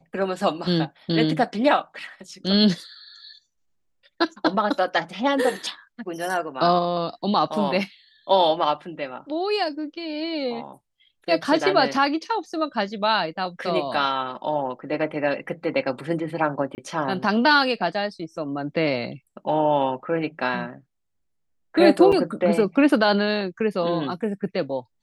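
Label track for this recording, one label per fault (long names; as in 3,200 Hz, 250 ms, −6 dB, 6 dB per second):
16.750000	16.780000	drop-out 29 ms
22.120000	22.130000	drop-out 5.3 ms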